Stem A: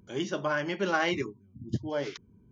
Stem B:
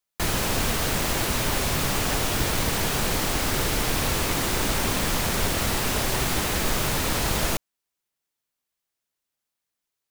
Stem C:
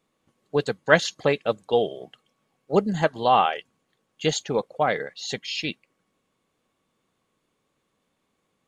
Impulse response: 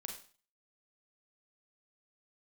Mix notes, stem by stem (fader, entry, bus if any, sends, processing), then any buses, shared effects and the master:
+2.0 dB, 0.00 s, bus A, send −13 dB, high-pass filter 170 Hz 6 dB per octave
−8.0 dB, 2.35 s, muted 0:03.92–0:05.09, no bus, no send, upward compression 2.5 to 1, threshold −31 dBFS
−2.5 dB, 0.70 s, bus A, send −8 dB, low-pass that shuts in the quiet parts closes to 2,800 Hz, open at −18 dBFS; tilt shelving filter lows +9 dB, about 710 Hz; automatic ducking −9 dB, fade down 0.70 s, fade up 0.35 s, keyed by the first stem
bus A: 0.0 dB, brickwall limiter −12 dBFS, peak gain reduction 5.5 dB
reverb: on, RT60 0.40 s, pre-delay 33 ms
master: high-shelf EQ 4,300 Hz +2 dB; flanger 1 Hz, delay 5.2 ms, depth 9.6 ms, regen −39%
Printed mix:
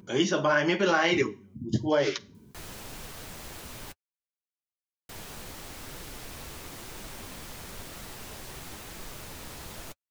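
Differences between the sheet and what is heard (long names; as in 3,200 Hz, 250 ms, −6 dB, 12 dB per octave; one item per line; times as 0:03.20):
stem A +2.0 dB → +12.0 dB
stem B −8.0 dB → −14.5 dB
stem C: muted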